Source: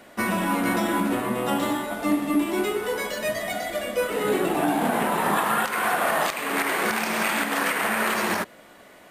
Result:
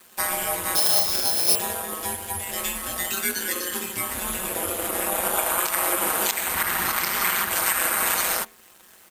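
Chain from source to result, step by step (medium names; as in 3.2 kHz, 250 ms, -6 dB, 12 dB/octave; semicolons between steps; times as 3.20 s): 0.75–1.55 s: sorted samples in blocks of 8 samples; comb 6.9 ms, depth 92%; in parallel at +1 dB: compression, threshold -29 dBFS, peak gain reduction 16 dB; on the sum: de-hum 86.36 Hz, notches 32; frequency shift -290 Hz; RIAA curve recording; crossover distortion -39.5 dBFS; 6.54–7.51 s: ten-band graphic EQ 250 Hz +10 dB, 500 Hz -10 dB, 1 kHz +4 dB, 8 kHz -5 dB; ring modulator 90 Hz; trim -4 dB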